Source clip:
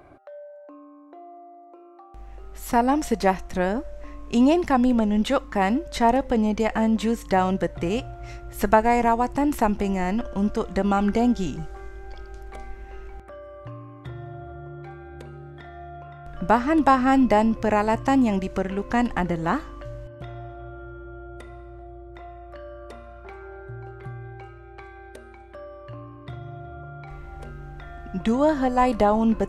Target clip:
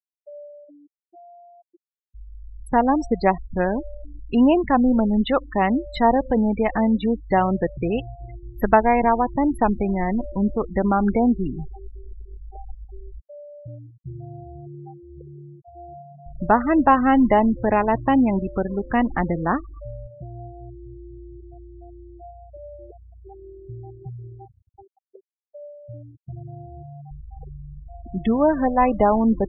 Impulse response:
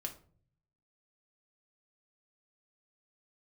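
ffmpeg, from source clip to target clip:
-af "afftdn=nr=14:nf=-34,afftfilt=real='re*gte(hypot(re,im),0.0447)':imag='im*gte(hypot(re,im),0.0447)':win_size=1024:overlap=0.75,volume=2dB"

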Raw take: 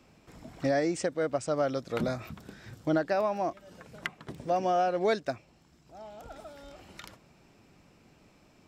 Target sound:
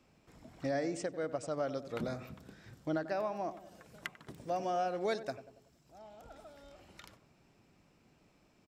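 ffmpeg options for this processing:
-filter_complex "[0:a]asettb=1/sr,asplit=3[a][b][c];[a]atrim=end=3.504[d];[b]atrim=start=3.5:end=5.99,asetpts=PTS-STARTPTS,afade=t=in:d=0.004:c=qsin,afade=t=out:st=2.486:d=0.004:c=qsin,highshelf=f=7k:g=8.5[e];[c]atrim=start=5.986[f];[d][e]acrossfade=d=0.004:c1=hsin:c2=qsin[g];[g][f]acrossfade=d=0.004:c1=qsin:c2=hsin,asplit=2[h][i];[i]adelay=94,lowpass=f=1.1k:p=1,volume=-12dB,asplit=2[j][k];[k]adelay=94,lowpass=f=1.1k:p=1,volume=0.55,asplit=2[l][m];[m]adelay=94,lowpass=f=1.1k:p=1,volume=0.55,asplit=2[n][o];[o]adelay=94,lowpass=f=1.1k:p=1,volume=0.55,asplit=2[p][q];[q]adelay=94,lowpass=f=1.1k:p=1,volume=0.55,asplit=2[r][s];[s]adelay=94,lowpass=f=1.1k:p=1,volume=0.55[t];[h][j][l][n][p][r][t]amix=inputs=7:normalize=0,volume=-7.5dB"

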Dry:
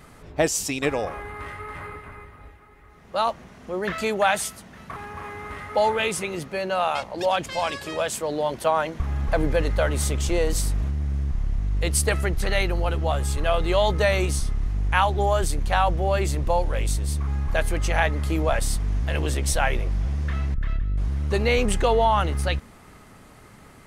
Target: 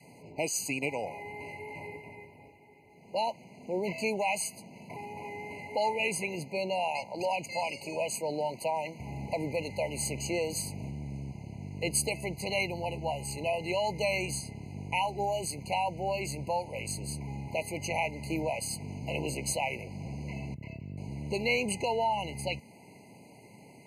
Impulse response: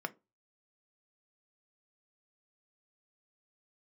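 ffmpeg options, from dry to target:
-filter_complex "[0:a]highpass=f=120:w=0.5412,highpass=f=120:w=1.3066,adynamicequalizer=threshold=0.0112:dfrequency=350:dqfactor=0.94:tfrequency=350:tqfactor=0.94:attack=5:release=100:ratio=0.375:range=3.5:mode=cutabove:tftype=bell,acrossover=split=1200[a][b];[a]alimiter=limit=-21dB:level=0:latency=1:release=346[c];[c][b]amix=inputs=2:normalize=0,afftfilt=real='re*eq(mod(floor(b*sr/1024/1000),2),0)':imag='im*eq(mod(floor(b*sr/1024/1000),2),0)':win_size=1024:overlap=0.75,volume=-2.5dB"

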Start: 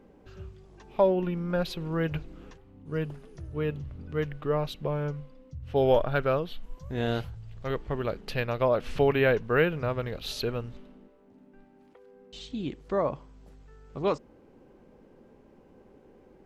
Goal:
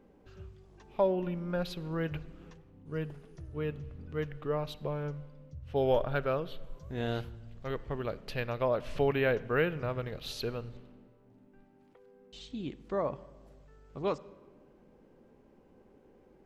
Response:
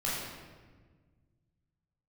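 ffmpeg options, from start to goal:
-filter_complex "[0:a]asplit=2[a][b];[1:a]atrim=start_sample=2205,adelay=50[c];[b][c]afir=irnorm=-1:irlink=0,volume=-26.5dB[d];[a][d]amix=inputs=2:normalize=0,volume=-5dB"

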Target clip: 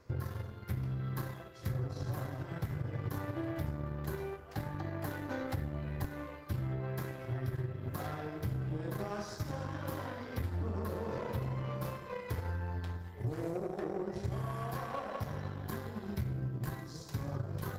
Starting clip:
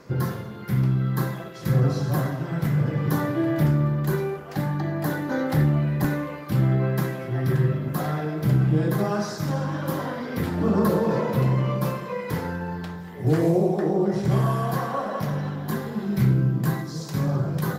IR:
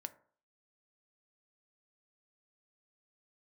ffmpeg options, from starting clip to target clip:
-af "lowshelf=f=120:t=q:w=3:g=9,acompressor=threshold=-25dB:ratio=6,aeval=exprs='0.158*(cos(1*acos(clip(val(0)/0.158,-1,1)))-cos(1*PI/2))+0.0112*(cos(7*acos(clip(val(0)/0.158,-1,1)))-cos(7*PI/2))':c=same,volume=-8dB"

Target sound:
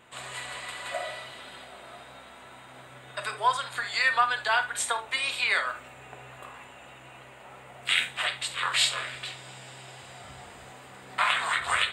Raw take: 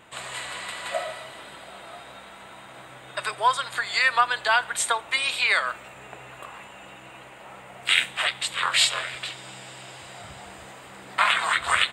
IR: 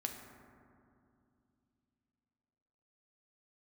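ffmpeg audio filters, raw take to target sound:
-filter_complex "[0:a]asettb=1/sr,asplit=3[a][b][c];[a]atrim=end=1.044[d];[b]atrim=start=1.04:end=1.65,asetpts=PTS-STARTPTS,afade=t=in:d=0.004:c=qsin,afade=t=out:st=0.606:d=0.004:c=qsin,equalizer=f=3.7k:w=0.91:g=4.5[e];[c]atrim=start=1.646[f];[d][e]acrossfade=d=0.004:c1=hsin:c2=qsin[g];[g][f]acrossfade=d=0.004:c1=qsin:c2=hsin[h];[1:a]atrim=start_sample=2205,atrim=end_sample=3528[i];[h][i]afir=irnorm=-1:irlink=0,volume=-2.5dB"

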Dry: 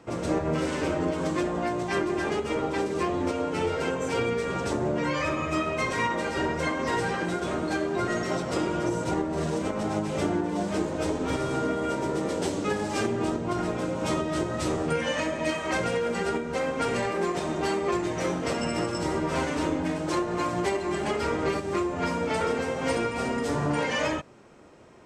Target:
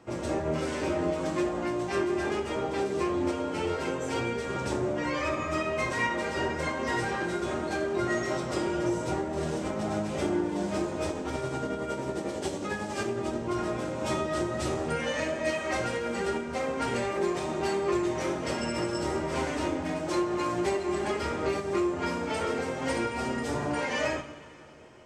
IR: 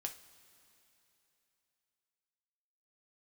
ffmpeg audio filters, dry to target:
-filter_complex "[0:a]asplit=3[a][b][c];[a]afade=t=out:st=11.07:d=0.02[d];[b]tremolo=f=11:d=0.49,afade=t=in:st=11.07:d=0.02,afade=t=out:st=13.32:d=0.02[e];[c]afade=t=in:st=13.32:d=0.02[f];[d][e][f]amix=inputs=3:normalize=0[g];[1:a]atrim=start_sample=2205[h];[g][h]afir=irnorm=-1:irlink=0"

